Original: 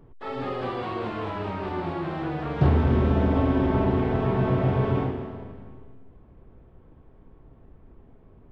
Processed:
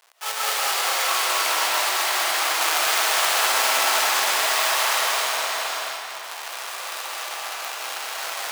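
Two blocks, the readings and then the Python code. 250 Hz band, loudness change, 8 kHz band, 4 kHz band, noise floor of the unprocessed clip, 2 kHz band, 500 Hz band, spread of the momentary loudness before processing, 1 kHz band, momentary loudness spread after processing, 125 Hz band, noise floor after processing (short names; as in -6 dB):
-22.0 dB, +4.5 dB, n/a, +25.0 dB, -53 dBFS, +17.0 dB, -3.0 dB, 11 LU, +9.0 dB, 12 LU, under -40 dB, -35 dBFS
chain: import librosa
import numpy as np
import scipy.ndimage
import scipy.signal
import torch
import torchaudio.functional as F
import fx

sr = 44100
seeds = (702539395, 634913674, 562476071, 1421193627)

p1 = fx.halfwave_hold(x, sr)
p2 = fx.recorder_agc(p1, sr, target_db=-17.5, rise_db_per_s=18.0, max_gain_db=30)
p3 = p2 + fx.echo_feedback(p2, sr, ms=209, feedback_pct=51, wet_db=-6, dry=0)
p4 = fx.rev_freeverb(p3, sr, rt60_s=4.1, hf_ratio=0.8, predelay_ms=95, drr_db=-5.0)
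p5 = np.clip(p4, -10.0 ** (-8.0 / 20.0), 10.0 ** (-8.0 / 20.0))
p6 = p4 + F.gain(torch.from_numpy(p5), -10.0).numpy()
p7 = scipy.signal.sosfilt(scipy.signal.butter(4, 730.0, 'highpass', fs=sr, output='sos'), p6)
p8 = fx.high_shelf(p7, sr, hz=2800.0, db=8.5)
y = F.gain(torch.from_numpy(p8), -5.5).numpy()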